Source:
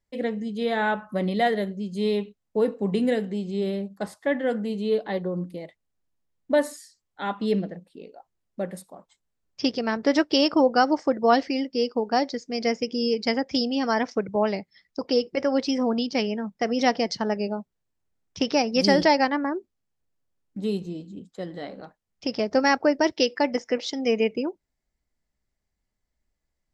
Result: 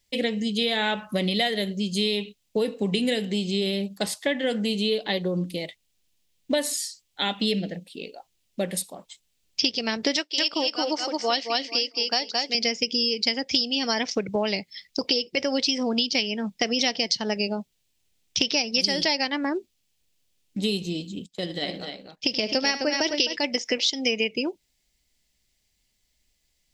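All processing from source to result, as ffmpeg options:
-filter_complex "[0:a]asettb=1/sr,asplit=3[a][b][c];[a]atrim=end=7.284[d];[b]atrim=start=7.28:end=7.87,asetpts=PTS-STARTPTS,afade=t=in:d=0.004:c=qsin,afade=t=out:st=0.586:d=0.004:c=qsin,equalizer=f=1.1k:w=5.8:g=-14,bandreject=f=380:w=9.6[e];[c]atrim=start=7.866[f];[d][e]acrossfade=d=0.004:c1=hsin:c2=qsin[g];[g][f]acrossfade=d=0.004:c1=qsin:c2=hsin,asettb=1/sr,asplit=3[h][i][j];[h]atrim=end=10.164[k];[i]atrim=start=10.16:end=12.55,asetpts=PTS-STARTPTS,afade=t=in:d=0.004:c=qsin,afade=t=out:st=2.386:d=0.004:c=qsin,highpass=f=620:p=1,tremolo=f=2.5:d=0.87,aecho=1:1:220|440|660:0.631|0.101|0.0162,atrim=end_sample=105399[l];[j]atrim=start=12.546[m];[k][l]acrossfade=d=0.004:c1=hsin:c2=qsin[n];[n][m]acrossfade=d=0.004:c1=qsin:c2=hsin,asettb=1/sr,asplit=3[o][p][q];[o]atrim=end=21.264[r];[p]atrim=start=21.26:end=23.45,asetpts=PTS-STARTPTS,afade=t=in:d=0.004:c=qsin,afade=t=out:st=2.186:d=0.004:c=qsin,agate=range=-11dB:threshold=-47dB:ratio=16:release=100:detection=peak,aecho=1:1:77|260:0.188|0.447,atrim=end_sample=96579,tremolo=f=16:d=0.36[s];[q]atrim=start=23.446[t];[r][s]acrossfade=d=0.004:c1=hsin:c2=qsin[u];[u][t]acrossfade=d=0.004:c1=qsin:c2=hsin,highshelf=f=2k:t=q:w=1.5:g=12,acompressor=threshold=-26dB:ratio=5,volume=4.5dB"

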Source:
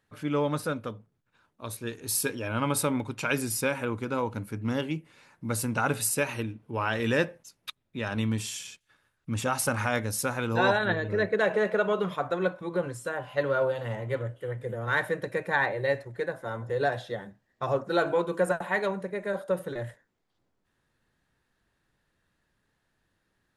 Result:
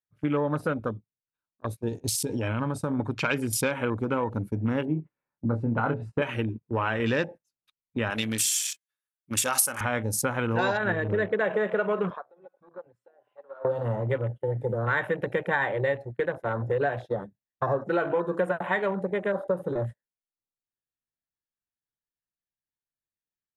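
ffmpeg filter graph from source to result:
-filter_complex "[0:a]asettb=1/sr,asplit=3[a][b][c];[a]atrim=end=1.884[d];[b]atrim=start=1.88:end=2.99,asetpts=PTS-STARTPTS,afade=t=in:d=0.004:c=qsin,afade=t=out:st=1.106:d=0.004:c=qsin,lowpass=7.2k,bass=f=250:g=5,treble=f=4k:g=10,acompressor=threshold=-30dB:ratio=6:attack=3.2:release=140:knee=1:detection=peak[e];[c]atrim=start=2.986[f];[d][e]acrossfade=d=0.004:c1=hsin:c2=qsin[g];[g][f]acrossfade=d=0.004:c1=qsin:c2=hsin,asettb=1/sr,asplit=3[h][i][j];[h]atrim=end=4.854[k];[i]atrim=start=4.85:end=6.22,asetpts=PTS-STARTPTS,afade=t=in:d=0.004:c=qsin,afade=t=out:st=1.366:d=0.004:c=qsin,lowpass=1.4k,asplit=2[l][m];[m]adelay=26,volume=-6dB[n];[l][n]amix=inputs=2:normalize=0,atrim=end_sample=60417[o];[j]atrim=start=6.216[p];[k][o]acrossfade=d=0.004:c1=hsin:c2=qsin[q];[q][p]acrossfade=d=0.004:c1=qsin:c2=hsin,asettb=1/sr,asplit=3[r][s][t];[r]atrim=end=8.104[u];[s]atrim=start=8.1:end=9.81,asetpts=PTS-STARTPTS,afade=t=in:d=0.004:c=qsin,afade=t=out:st=1.706:d=0.004:c=qsin,aemphasis=mode=production:type=riaa,bandreject=f=97.67:t=h:w=4,bandreject=f=195.34:t=h:w=4,bandreject=f=293.01:t=h:w=4,bandreject=f=390.68:t=h:w=4,bandreject=f=488.35:t=h:w=4,bandreject=f=586.02:t=h:w=4,bandreject=f=683.69:t=h:w=4,bandreject=f=781.36:t=h:w=4,bandreject=f=879.03:t=h:w=4,bandreject=f=976.7:t=h:w=4,bandreject=f=1.07437k:t=h:w=4,bandreject=f=1.17204k:t=h:w=4,bandreject=f=1.26971k:t=h:w=4,bandreject=f=1.36738k:t=h:w=4,bandreject=f=1.46505k:t=h:w=4,bandreject=f=1.56272k:t=h:w=4,bandreject=f=1.66039k:t=h:w=4,bandreject=f=1.75806k:t=h:w=4,bandreject=f=1.85573k:t=h:w=4,bandreject=f=1.9534k:t=h:w=4,bandreject=f=2.05107k:t=h:w=4,bandreject=f=2.14874k:t=h:w=4[v];[t]atrim=start=9.806[w];[u][v]acrossfade=d=0.004:c1=hsin:c2=qsin[x];[x][w]acrossfade=d=0.004:c1=qsin:c2=hsin,asettb=1/sr,asplit=3[y][z][aa];[y]atrim=end=12.104[ab];[z]atrim=start=12.1:end=13.65,asetpts=PTS-STARTPTS,afade=t=in:d=0.004:c=qsin,afade=t=out:st=1.546:d=0.004:c=qsin,acrossover=split=490 3500:gain=0.224 1 0.0708[ac][ad][ae];[ac][ad][ae]amix=inputs=3:normalize=0,acompressor=threshold=-39dB:ratio=6:attack=3.2:release=140:knee=1:detection=peak[af];[aa]atrim=start=13.646[ag];[ab][af]acrossfade=d=0.004:c1=hsin:c2=qsin[ah];[ah][ag]acrossfade=d=0.004:c1=qsin:c2=hsin,afwtdn=0.0112,agate=range=-20dB:threshold=-40dB:ratio=16:detection=peak,acompressor=threshold=-31dB:ratio=4,volume=7.5dB"

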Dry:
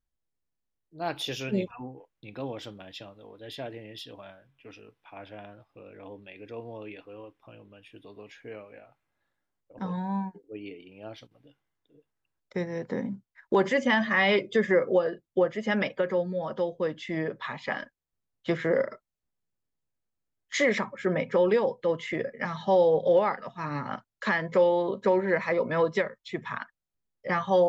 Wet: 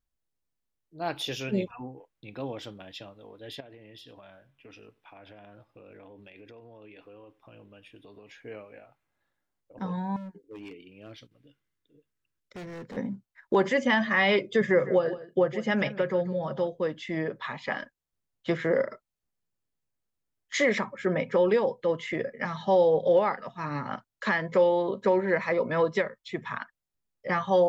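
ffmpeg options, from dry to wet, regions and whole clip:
-filter_complex "[0:a]asettb=1/sr,asplit=3[a][b][c];[a]atrim=end=3.604[d];[b]atrim=start=3.6:end=8.34,asetpts=PTS-STARTPTS,afade=t=in:d=0.004:c=qsin,afade=t=out:st=4.736:d=0.004:c=qsin,acompressor=threshold=-45dB:ratio=12:attack=3.2:release=140:knee=1:detection=peak,aecho=1:1:93:0.0794,atrim=end_sample=209034[e];[c]atrim=start=8.336[f];[d][e]acrossfade=d=0.004:c1=hsin:c2=qsin[g];[g][f]acrossfade=d=0.004:c1=qsin:c2=hsin,asettb=1/sr,asplit=3[h][i][j];[h]atrim=end=10.164[k];[i]atrim=start=10.16:end=12.97,asetpts=PTS-STARTPTS,afade=t=in:d=0.004:c=qsin,afade=t=out:st=2.806:d=0.004:c=qsin,equalizer=f=790:t=o:w=0.79:g=-12,asoftclip=type=hard:threshold=-38dB[l];[j]atrim=start=12.966[m];[k][l]acrossfade=d=0.004:c1=hsin:c2=qsin[n];[n][m]acrossfade=d=0.004:c1=qsin:c2=hsin,asettb=1/sr,asplit=3[o][p][q];[o]atrim=end=14.614[r];[p]atrim=start=14.61:end=16.68,asetpts=PTS-STARTPTS,afade=t=in:d=0.004:c=qsin,afade=t=out:st=2.066:d=0.004:c=qsin,equalizer=f=140:t=o:w=0.23:g=14.5,aecho=1:1:156:0.178,atrim=end_sample=91287[s];[q]atrim=start=16.676[t];[r][s]acrossfade=d=0.004:c1=hsin:c2=qsin[u];[u][t]acrossfade=d=0.004:c1=qsin:c2=hsin"

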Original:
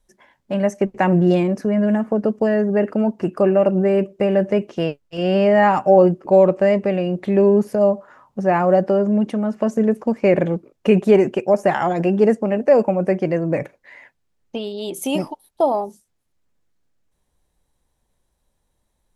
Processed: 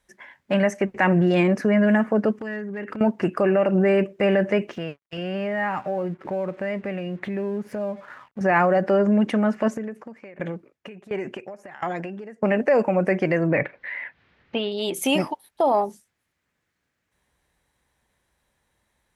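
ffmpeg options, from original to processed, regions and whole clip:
-filter_complex "[0:a]asettb=1/sr,asplit=3[a][b][c];[a]atrim=end=2.324[d];[b]atrim=start=2.32:end=3.01,asetpts=PTS-STARTPTS,afade=t=in:d=0.004:c=qsin,afade=t=out:st=0.686:d=0.004:c=qsin,equalizer=f=650:t=o:w=0.59:g=-8,acompressor=threshold=-29dB:ratio=16:attack=3.2:release=140:knee=1:detection=peak,asoftclip=type=hard:threshold=-27dB[e];[c]atrim=start=3.006[f];[d][e]acrossfade=d=0.004:c1=hsin:c2=qsin[g];[g][f]acrossfade=d=0.004:c1=qsin:c2=hsin,asettb=1/sr,asplit=3[h][i][j];[h]atrim=end=4.724[k];[i]atrim=start=4.72:end=8.41,asetpts=PTS-STARTPTS,afade=t=in:d=0.004:c=qsin,afade=t=out:st=3.686:d=0.004:c=qsin,bass=f=250:g=5,treble=f=4k:g=-4,acompressor=threshold=-33dB:ratio=2.5:attack=3.2:release=140:knee=1:detection=peak,aeval=exprs='sgn(val(0))*max(abs(val(0))-0.00119,0)':c=same[l];[j]atrim=start=8.406[m];[k][l]acrossfade=d=0.004:c1=hsin:c2=qsin[n];[n][m]acrossfade=d=0.004:c1=qsin:c2=hsin,asettb=1/sr,asplit=3[o][p][q];[o]atrim=end=9.684[r];[p]atrim=start=9.68:end=12.43,asetpts=PTS-STARTPTS,afade=t=in:d=0.004:c=qsin,afade=t=out:st=2.746:d=0.004:c=qsin,acompressor=threshold=-23dB:ratio=12:attack=3.2:release=140:knee=1:detection=peak,aeval=exprs='val(0)*pow(10,-20*if(lt(mod(1.4*n/s,1),2*abs(1.4)/1000),1-mod(1.4*n/s,1)/(2*abs(1.4)/1000),(mod(1.4*n/s,1)-2*abs(1.4)/1000)/(1-2*abs(1.4)/1000))/20)':c=same[s];[q]atrim=start=12.426[t];[r][s]acrossfade=d=0.004:c1=hsin:c2=qsin[u];[u][t]acrossfade=d=0.004:c1=qsin:c2=hsin,asettb=1/sr,asplit=3[v][w][x];[v]atrim=end=13.474[y];[w]atrim=start=13.47:end=14.72,asetpts=PTS-STARTPTS,afade=t=in:d=0.004:c=qsin,afade=t=out:st=1.246:d=0.004:c=qsin,lowpass=f=4k:w=0.5412,lowpass=f=4k:w=1.3066,acompressor=mode=upward:threshold=-38dB:ratio=2.5:attack=3.2:release=140:knee=2.83:detection=peak[z];[x]atrim=start=14.716[aa];[y][z]acrossfade=d=0.004:c1=hsin:c2=qsin[ab];[ab][aa]acrossfade=d=0.004:c1=qsin:c2=hsin,alimiter=limit=-13dB:level=0:latency=1:release=61,highpass=56,equalizer=f=1.9k:w=1:g=11"

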